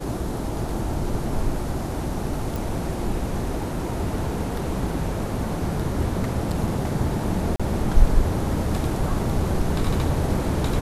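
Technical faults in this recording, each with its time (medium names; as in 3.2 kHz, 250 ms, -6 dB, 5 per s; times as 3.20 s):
2.56 s: pop
7.56–7.60 s: dropout 36 ms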